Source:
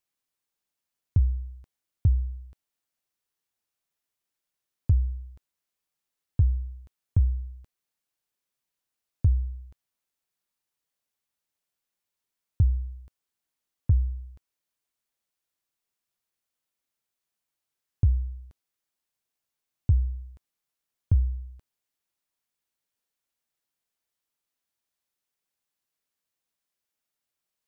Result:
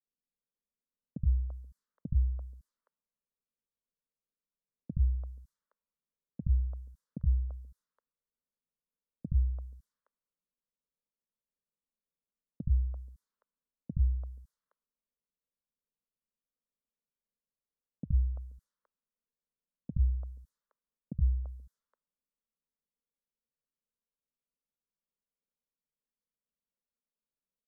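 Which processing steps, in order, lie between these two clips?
phaser with its sweep stopped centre 500 Hz, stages 8
low-pass that shuts in the quiet parts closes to 520 Hz, open at −29 dBFS
three-band delay without the direct sound mids, lows, highs 70/340 ms, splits 170/560 Hz
level +2 dB

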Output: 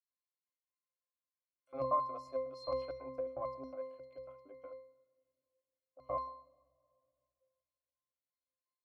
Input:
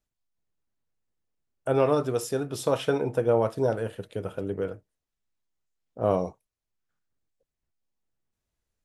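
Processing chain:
auto-filter high-pass square 5.5 Hz 790–5,000 Hz
harmonic generator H 2 −19 dB, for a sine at −9.5 dBFS
resonances in every octave C, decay 0.59 s
0:01.84–0:02.50: hollow resonant body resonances 640/1,100 Hz, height 11 dB
on a send: convolution reverb RT60 2.3 s, pre-delay 28 ms, DRR 23 dB
on the sum: level +11 dB

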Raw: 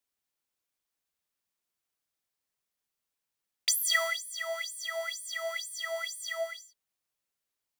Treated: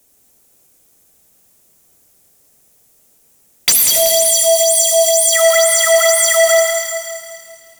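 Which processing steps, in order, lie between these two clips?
flat-topped bell 2,100 Hz −11 dB 2.8 octaves
in parallel at −4 dB: sine wavefolder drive 14 dB, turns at −18.5 dBFS
0:03.72–0:05.32: on the sum: Butterworth band-reject 1,500 Hz, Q 0.6
feedback echo with a high-pass in the loop 270 ms, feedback 43%, high-pass 470 Hz, level −13.5 dB
on a send at −2 dB: convolution reverb, pre-delay 62 ms
on the sum: boost into a limiter +20 dB
feedback echo at a low word length 190 ms, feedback 55%, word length 7 bits, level −10 dB
level −3 dB

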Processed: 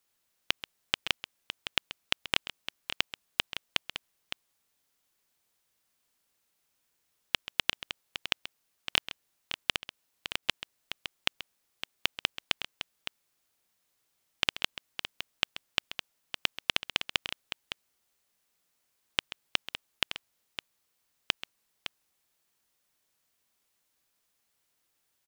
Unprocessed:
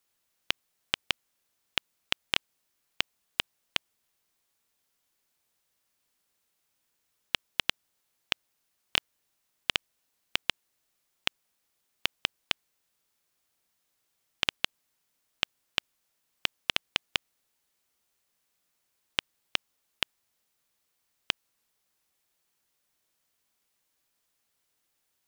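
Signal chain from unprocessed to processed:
multi-tap delay 133/561 ms −14/−10 dB
0:09.75–0:10.43: downward compressor 2.5 to 1, threshold −31 dBFS, peak gain reduction 7.5 dB

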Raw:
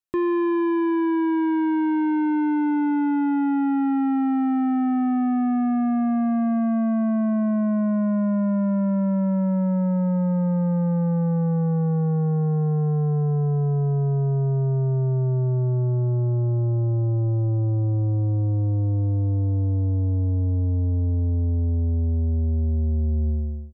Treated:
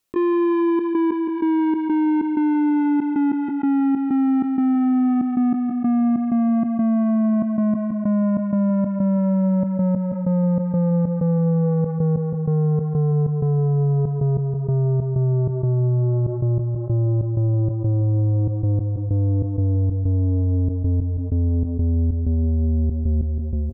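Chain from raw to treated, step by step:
thirty-one-band graphic EQ 250 Hz +3 dB, 500 Hz +4 dB, 800 Hz −3 dB, 1,600 Hz −5 dB
gate pattern ".xxxx.x..xx.xx" 95 BPM −24 dB
on a send: repeating echo 168 ms, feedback 47%, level −15 dB
on the sum: envelope flattener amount 70%

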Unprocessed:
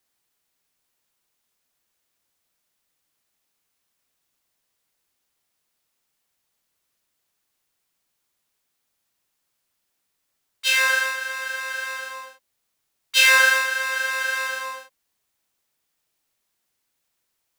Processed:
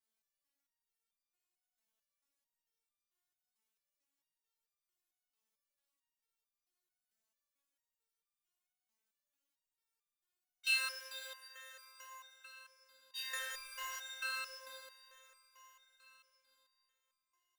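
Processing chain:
0:13.32–0:13.99: converter with a step at zero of −29.5 dBFS
feedback delay with all-pass diffusion 471 ms, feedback 51%, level −9.5 dB
step-sequenced resonator 4.5 Hz 220–1,200 Hz
level −1 dB

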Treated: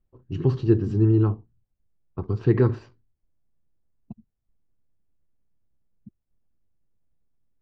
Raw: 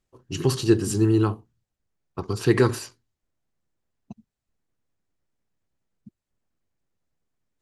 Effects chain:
Gaussian smoothing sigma 2 samples
spectral tilt −3 dB per octave
level −6 dB

